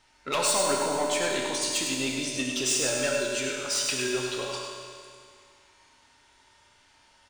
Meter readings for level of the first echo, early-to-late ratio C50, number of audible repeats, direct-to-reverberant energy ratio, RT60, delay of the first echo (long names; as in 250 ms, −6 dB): −5.5 dB, −0.5 dB, 1, −2.5 dB, 2.3 s, 101 ms